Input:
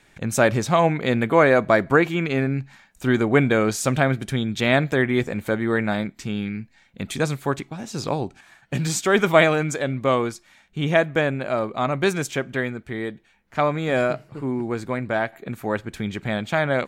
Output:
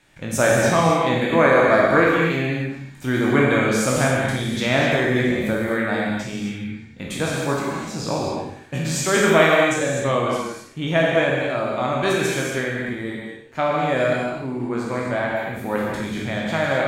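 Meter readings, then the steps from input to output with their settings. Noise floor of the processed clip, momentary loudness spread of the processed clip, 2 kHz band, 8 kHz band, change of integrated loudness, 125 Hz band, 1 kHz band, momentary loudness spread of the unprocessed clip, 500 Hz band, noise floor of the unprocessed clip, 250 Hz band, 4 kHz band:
-41 dBFS, 13 LU, +3.0 dB, +3.5 dB, +2.0 dB, 0.0 dB, +2.5 dB, 13 LU, +2.0 dB, -58 dBFS, +1.0 dB, +3.5 dB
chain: spectral trails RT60 0.61 s; non-linear reverb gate 0.29 s flat, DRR -2 dB; gain -4 dB

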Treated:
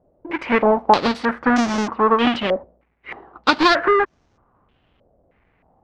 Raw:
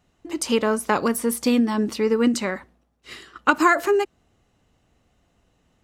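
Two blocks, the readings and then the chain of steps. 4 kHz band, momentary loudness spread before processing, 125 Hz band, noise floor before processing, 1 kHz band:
+7.0 dB, 14 LU, n/a, -67 dBFS, +6.5 dB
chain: half-waves squared off; overdrive pedal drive 4 dB, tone 1300 Hz, clips at -3.5 dBFS; stepped low-pass 3.2 Hz 580–6100 Hz; gain +1 dB

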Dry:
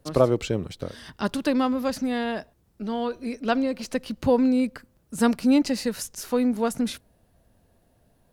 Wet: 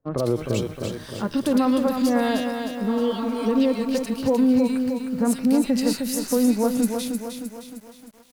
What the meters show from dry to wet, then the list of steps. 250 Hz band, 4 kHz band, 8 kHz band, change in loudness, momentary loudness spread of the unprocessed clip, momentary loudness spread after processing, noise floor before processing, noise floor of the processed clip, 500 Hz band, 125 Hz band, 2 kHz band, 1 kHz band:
+3.5 dB, +2.0 dB, +5.0 dB, +2.5 dB, 13 LU, 11 LU, -64 dBFS, -46 dBFS, +1.5 dB, +1.5 dB, -0.5 dB, +0.5 dB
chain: spectral repair 2.93–3.55, 510–1700 Hz before; gate -53 dBFS, range -22 dB; high shelf 10000 Hz +10 dB; harmonic-percussive split percussive -7 dB; bell 70 Hz -14.5 dB 0.34 oct; limiter -19 dBFS, peak gain reduction 11.5 dB; bands offset in time lows, highs 0.12 s, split 2000 Hz; lo-fi delay 0.309 s, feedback 55%, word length 9-bit, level -6 dB; gain +6 dB

